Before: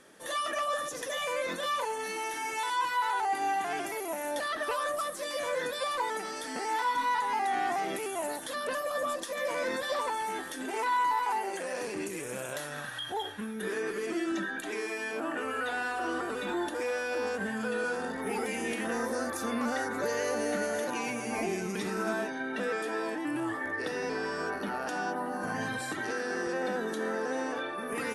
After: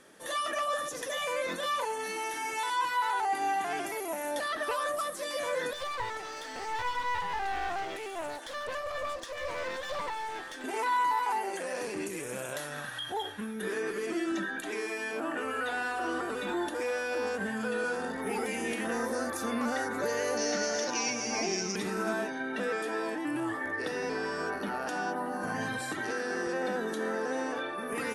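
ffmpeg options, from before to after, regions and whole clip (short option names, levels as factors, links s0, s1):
-filter_complex "[0:a]asettb=1/sr,asplit=3[s0][s1][s2];[s0]atrim=end=5.734[s3];[s1]atrim=start=5.73:end=10.64,asetpts=PTS-STARTPTS,afade=t=in:d=0.004:c=qsin,afade=t=out:st=4.906:d=0.004:c=qsin,highpass=420,lowpass=6100,aeval=exprs='clip(val(0),-1,0.01)':c=same[s4];[s2]atrim=start=10.636[s5];[s3][s4]acrossfade=d=0.004:c1=hsin:c2=qsin[s6];[s6][s5]acrossfade=d=0.004:c1=qsin:c2=hsin,asettb=1/sr,asplit=3[s7][s8][s9];[s7]atrim=end=20.374[s10];[s8]atrim=start=20.37:end=21.76,asetpts=PTS-STARTPTS,afade=t=in:d=0.004:c=qsin,afade=t=out:st=1.386:d=0.004:c=qsin,lowshelf=f=130:g=-7,volume=14.1,asoftclip=hard,volume=0.0708,lowpass=f=5500:t=q:w=8.7[s11];[s9]atrim=start=21.756[s12];[s10][s11]acrossfade=d=0.004:c1=hsin:c2=qsin[s13];[s13][s12]acrossfade=d=0.004:c1=qsin:c2=hsin"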